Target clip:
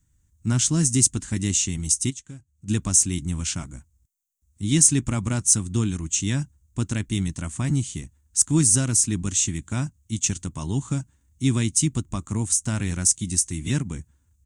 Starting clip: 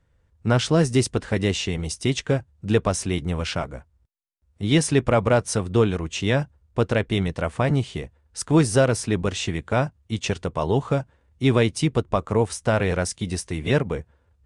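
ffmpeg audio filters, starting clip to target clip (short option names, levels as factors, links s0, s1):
-filter_complex "[0:a]firequalizer=gain_entry='entry(300,0);entry(460,-21);entry(960,-10);entry(6500,7);entry(9900,-7)':delay=0.05:min_phase=1,aexciter=amount=7.6:drive=5.6:freq=7100,asplit=3[s0][s1][s2];[s0]afade=t=out:st=2.09:d=0.02[s3];[s1]acompressor=threshold=0.00708:ratio=2.5,afade=t=in:st=2.09:d=0.02,afade=t=out:st=2.67:d=0.02[s4];[s2]afade=t=in:st=2.67:d=0.02[s5];[s3][s4][s5]amix=inputs=3:normalize=0,volume=0.891"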